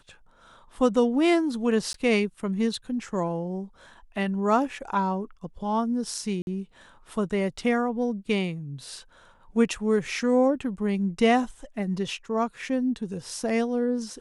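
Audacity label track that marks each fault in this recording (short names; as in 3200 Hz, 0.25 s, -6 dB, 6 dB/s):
1.930000	1.940000	gap 13 ms
6.420000	6.470000	gap 51 ms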